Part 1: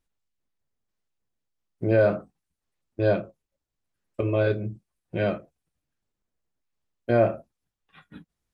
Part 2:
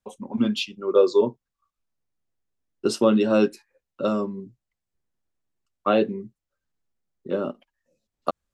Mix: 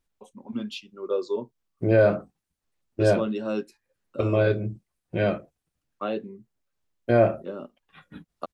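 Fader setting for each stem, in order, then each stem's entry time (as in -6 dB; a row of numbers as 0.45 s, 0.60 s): +1.5 dB, -9.5 dB; 0.00 s, 0.15 s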